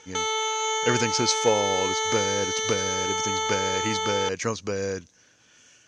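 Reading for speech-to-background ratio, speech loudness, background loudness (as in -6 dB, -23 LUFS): -2.0 dB, -28.0 LUFS, -26.0 LUFS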